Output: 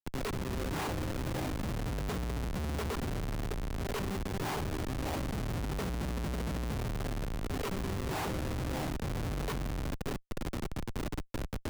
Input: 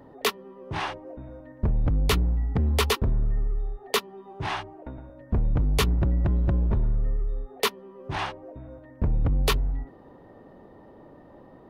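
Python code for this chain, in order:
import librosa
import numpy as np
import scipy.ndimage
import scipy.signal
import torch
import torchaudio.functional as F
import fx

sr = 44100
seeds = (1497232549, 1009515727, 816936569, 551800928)

p1 = fx.octave_divider(x, sr, octaves=2, level_db=0.0)
p2 = scipy.signal.sosfilt(scipy.signal.butter(2, 220.0, 'highpass', fs=sr, output='sos'), p1)
p3 = fx.tilt_eq(p2, sr, slope=-4.0)
p4 = fx.level_steps(p3, sr, step_db=15)
p5 = fx.cheby_harmonics(p4, sr, harmonics=(5, 6), levels_db=(-13, -23), full_scale_db=-17.5)
p6 = fx.air_absorb(p5, sr, metres=60.0)
p7 = p6 + fx.echo_stepped(p6, sr, ms=602, hz=630.0, octaves=1.4, feedback_pct=70, wet_db=-6.5, dry=0)
p8 = fx.schmitt(p7, sr, flips_db=-36.0)
p9 = fx.band_squash(p8, sr, depth_pct=40)
y = p9 * 10.0 ** (-4.0 / 20.0)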